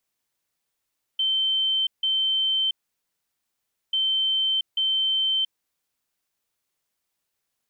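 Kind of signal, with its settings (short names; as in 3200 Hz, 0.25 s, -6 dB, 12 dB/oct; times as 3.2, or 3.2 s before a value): beep pattern sine 3100 Hz, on 0.68 s, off 0.16 s, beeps 2, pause 1.22 s, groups 2, -20 dBFS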